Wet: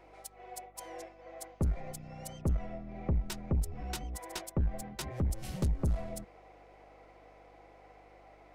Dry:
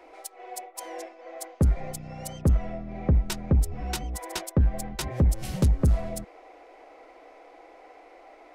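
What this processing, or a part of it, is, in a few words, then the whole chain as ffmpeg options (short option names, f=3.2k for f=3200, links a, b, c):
valve amplifier with mains hum: -filter_complex "[0:a]asettb=1/sr,asplit=3[a][b][c];[a]atrim=end=4.824[d];[b]atrim=start=4.82:end=5.3,asetpts=PTS-STARTPTS,afade=t=in:d=0.004:c=qsin,afade=t=out:st=0.476:d=0.004:c=qsin,highpass=f=56:w=0.5412,highpass=f=56:w=1.3066[e];[c]atrim=start=5.296[f];[d][e]acrossfade=d=0.004:c1=hsin:c2=qsin[g];[g][f]acrossfade=d=0.004:c1=qsin:c2=hsin,aeval=exprs='(tanh(7.94*val(0)+0.35)-tanh(0.35))/7.94':c=same,aeval=exprs='val(0)+0.00141*(sin(2*PI*50*n/s)+sin(2*PI*2*50*n/s)/2+sin(2*PI*3*50*n/s)/3+sin(2*PI*4*50*n/s)/4+sin(2*PI*5*50*n/s)/5)':c=same,volume=-6dB"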